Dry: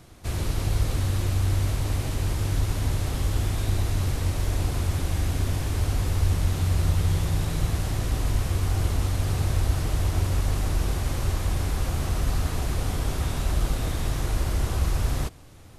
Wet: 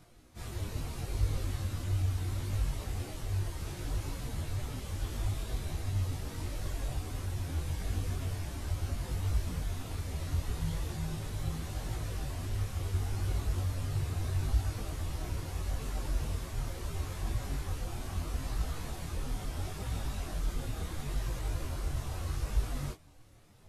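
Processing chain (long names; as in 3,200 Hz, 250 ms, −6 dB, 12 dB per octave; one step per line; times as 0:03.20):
time stretch by phase vocoder 1.5×
micro pitch shift up and down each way 26 cents
level −3.5 dB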